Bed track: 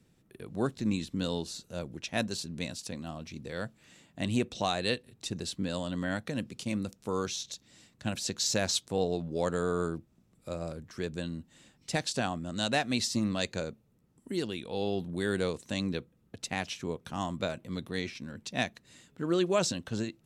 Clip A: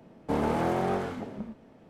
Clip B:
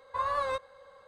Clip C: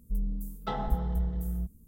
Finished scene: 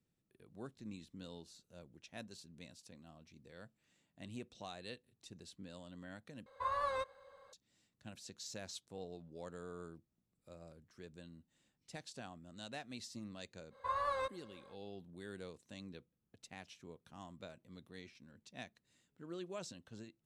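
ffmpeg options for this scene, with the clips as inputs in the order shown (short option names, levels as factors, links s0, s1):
-filter_complex "[2:a]asplit=2[s0][s1];[0:a]volume=0.119,asplit=2[s2][s3];[s2]atrim=end=6.464[s4];[s0]atrim=end=1.07,asetpts=PTS-STARTPTS,volume=0.473[s5];[s3]atrim=start=7.526[s6];[s1]atrim=end=1.07,asetpts=PTS-STARTPTS,volume=0.473,afade=t=in:d=0.05,afade=t=out:st=1.02:d=0.05,adelay=13700[s7];[s4][s5]acrossfade=d=0.004:c1=hsin:c2=hsin[s8];[s8][s6]acrossfade=d=0.004:c1=hsin:c2=hsin[s9];[s9][s7]amix=inputs=2:normalize=0"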